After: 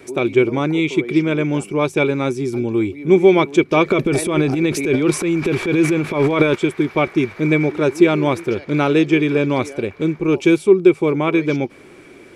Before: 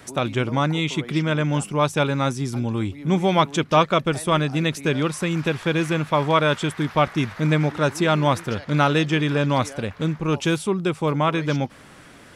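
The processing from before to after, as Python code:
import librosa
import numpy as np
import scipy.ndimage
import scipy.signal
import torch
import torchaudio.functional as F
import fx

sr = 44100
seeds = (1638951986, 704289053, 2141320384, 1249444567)

y = fx.transient(x, sr, attack_db=-9, sustain_db=11, at=(3.85, 6.54), fade=0.02)
y = fx.small_body(y, sr, hz=(370.0, 2300.0), ring_ms=35, db=18)
y = y * 10.0 ** (-3.0 / 20.0)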